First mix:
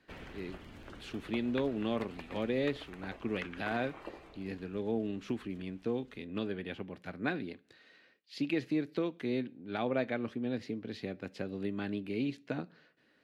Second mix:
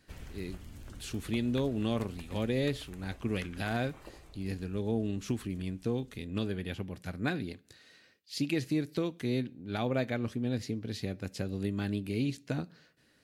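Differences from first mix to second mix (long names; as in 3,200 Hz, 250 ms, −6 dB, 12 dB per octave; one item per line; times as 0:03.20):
background −6.0 dB
master: remove three-way crossover with the lows and the highs turned down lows −14 dB, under 190 Hz, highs −18 dB, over 3,800 Hz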